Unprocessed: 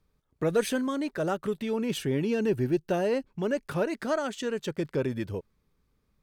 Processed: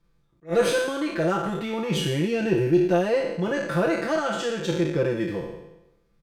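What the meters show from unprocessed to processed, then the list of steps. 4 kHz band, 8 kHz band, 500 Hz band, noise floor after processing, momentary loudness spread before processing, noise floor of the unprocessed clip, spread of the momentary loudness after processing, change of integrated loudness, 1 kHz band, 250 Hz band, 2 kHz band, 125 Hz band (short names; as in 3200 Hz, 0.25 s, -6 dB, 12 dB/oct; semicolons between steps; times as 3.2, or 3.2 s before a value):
+7.5 dB, +4.5 dB, +5.0 dB, -65 dBFS, 5 LU, -73 dBFS, 7 LU, +5.0 dB, +6.0 dB, +4.0 dB, +7.5 dB, +5.5 dB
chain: spectral trails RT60 0.96 s; high shelf 9400 Hz -10 dB; comb 5.9 ms, depth 99%; attack slew limiter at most 320 dB/s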